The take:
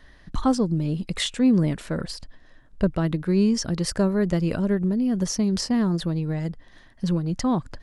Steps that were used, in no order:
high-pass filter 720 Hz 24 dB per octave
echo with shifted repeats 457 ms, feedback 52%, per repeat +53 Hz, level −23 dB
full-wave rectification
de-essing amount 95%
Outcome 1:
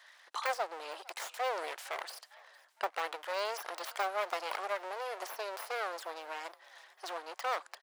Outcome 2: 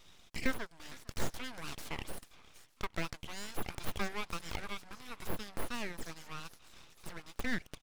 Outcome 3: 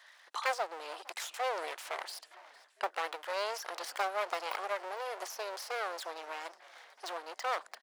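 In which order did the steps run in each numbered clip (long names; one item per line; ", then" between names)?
full-wave rectification, then de-essing, then high-pass filter, then echo with shifted repeats
echo with shifted repeats, then high-pass filter, then full-wave rectification, then de-essing
de-essing, then echo with shifted repeats, then full-wave rectification, then high-pass filter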